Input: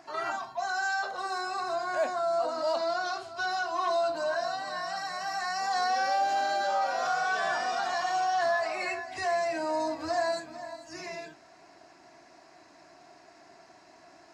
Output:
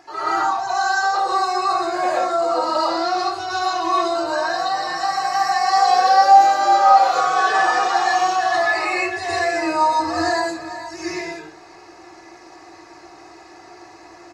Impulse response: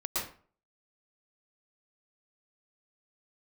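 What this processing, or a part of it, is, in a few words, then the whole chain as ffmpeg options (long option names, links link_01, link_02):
microphone above a desk: -filter_complex "[0:a]aecho=1:1:2.4:0.67[link_01];[1:a]atrim=start_sample=2205[link_02];[link_01][link_02]afir=irnorm=-1:irlink=0,volume=5.5dB"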